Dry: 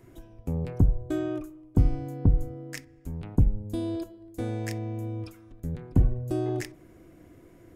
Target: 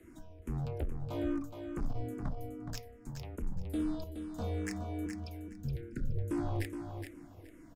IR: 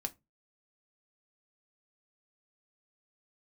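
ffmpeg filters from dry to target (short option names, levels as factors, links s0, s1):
-filter_complex "[0:a]asettb=1/sr,asplit=3[s0][s1][s2];[s0]atrim=end=2.324[s3];[s1]atrim=start=2.32:end=3.42,asetpts=PTS-STARTPTS,afade=t=in:d=0.004:c=qsin,afade=t=out:st=1.096:d=0.004:c=qsin,acrossover=split=500|3000[s4][s5][s6];[s4]acompressor=threshold=0.0158:ratio=6[s7];[s7][s5][s6]amix=inputs=3:normalize=0[s8];[s2]atrim=start=3.416[s9];[s3][s8]acrossfade=d=0.004:c1=hsin:c2=qsin[s10];[s10][s9]acrossfade=d=0.004:c1=qsin:c2=hsin,asoftclip=type=hard:threshold=0.0501,afreqshift=-23,asoftclip=type=tanh:threshold=0.0631,asettb=1/sr,asplit=3[s11][s12][s13];[s11]atrim=end=5.064[s14];[s12]atrim=start=5.06:end=6.18,asetpts=PTS-STARTPTS,afade=t=in:d=0.004:c=qsin,afade=t=out:st=1.116:d=0.004:c=qsin,asuperstop=centerf=880:order=20:qfactor=1.1[s15];[s13]atrim=start=6.176[s16];[s14][s15]acrossfade=d=0.004:c1=hsin:c2=qsin[s17];[s17][s16]acrossfade=d=0.004:c1=qsin:c2=hsin,aecho=1:1:420|840|1260:0.447|0.0849|0.0161,asplit=2[s18][s19];[s19]afreqshift=-2.4[s20];[s18][s20]amix=inputs=2:normalize=1"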